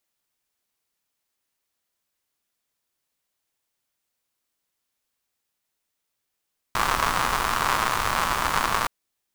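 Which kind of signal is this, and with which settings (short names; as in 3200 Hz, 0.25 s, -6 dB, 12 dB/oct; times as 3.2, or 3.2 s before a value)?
rain from filtered ticks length 2.12 s, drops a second 170, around 1100 Hz, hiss -7 dB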